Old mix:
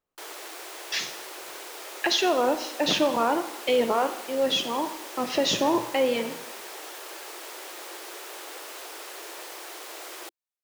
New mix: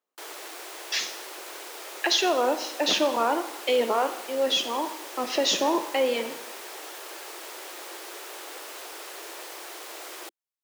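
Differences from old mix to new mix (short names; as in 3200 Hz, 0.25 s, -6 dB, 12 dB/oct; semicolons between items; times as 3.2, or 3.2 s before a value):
speech: add tone controls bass -8 dB, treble +3 dB; master: add steep high-pass 180 Hz 36 dB/oct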